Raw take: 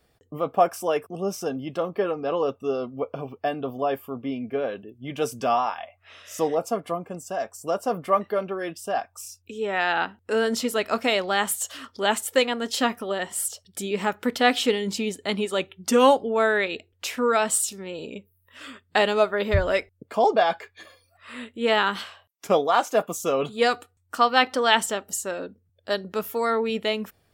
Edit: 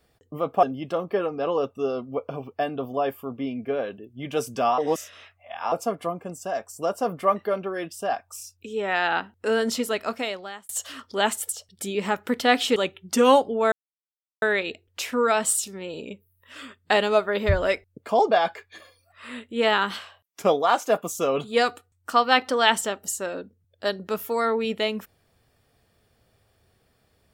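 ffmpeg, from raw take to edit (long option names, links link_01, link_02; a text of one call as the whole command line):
ffmpeg -i in.wav -filter_complex "[0:a]asplit=8[link_01][link_02][link_03][link_04][link_05][link_06][link_07][link_08];[link_01]atrim=end=0.632[link_09];[link_02]atrim=start=1.478:end=5.632[link_10];[link_03]atrim=start=5.628:end=6.572,asetpts=PTS-STARTPTS,areverse[link_11];[link_04]atrim=start=6.568:end=11.54,asetpts=PTS-STARTPTS,afade=type=out:start_time=4.052:duration=0.92[link_12];[link_05]atrim=start=11.54:end=12.342,asetpts=PTS-STARTPTS,afade=type=in:duration=0.004:curve=hsin[link_13];[link_06]atrim=start=13.448:end=14.722[link_14];[link_07]atrim=start=15.508:end=16.47,asetpts=PTS-STARTPTS,afade=type=out:start_time=0.958:duration=0.004:curve=hsin,apad=pad_dur=0.7[link_15];[link_08]atrim=start=16.47,asetpts=PTS-STARTPTS,afade=type=in:duration=0.004:curve=hsin[link_16];[link_09][link_10]acrossfade=duration=0.004:curve1=hsin:curve2=hsin[link_17];[link_17][link_11]acrossfade=duration=0.004:curve1=hsin:curve2=hsin[link_18];[link_12][link_13]concat=n=2:v=0:a=1[link_19];[link_18][link_19]acrossfade=duration=0.004:curve1=hsin:curve2=hsin[link_20];[link_20][link_14]acrossfade=duration=0.004:curve1=hsin:curve2=hsin[link_21];[link_15][link_16]concat=n=2:v=0:a=1[link_22];[link_21][link_22]acrossfade=duration=0.004:curve1=hsin:curve2=hsin" out.wav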